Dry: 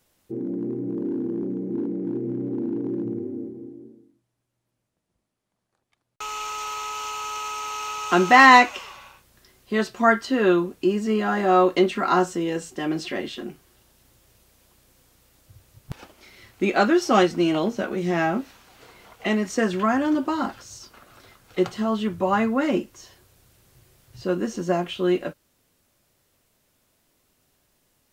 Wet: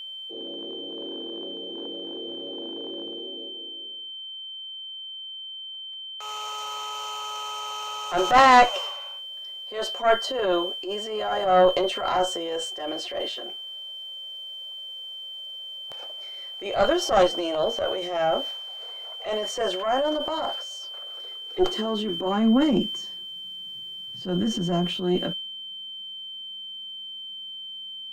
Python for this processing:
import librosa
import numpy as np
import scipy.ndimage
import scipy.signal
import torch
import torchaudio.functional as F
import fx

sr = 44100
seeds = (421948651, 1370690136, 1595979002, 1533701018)

y = fx.dynamic_eq(x, sr, hz=2100.0, q=1.1, threshold_db=-37.0, ratio=4.0, max_db=-6)
y = fx.filter_sweep_highpass(y, sr, from_hz=580.0, to_hz=190.0, start_s=20.9, end_s=22.83, q=3.8)
y = fx.cheby_harmonics(y, sr, harmonics=(4,), levels_db=(-15,), full_scale_db=3.0)
y = y + 10.0 ** (-31.0 / 20.0) * np.sin(2.0 * np.pi * 3100.0 * np.arange(len(y)) / sr)
y = fx.transient(y, sr, attack_db=-9, sustain_db=6)
y = F.gain(torch.from_numpy(y), -4.0).numpy()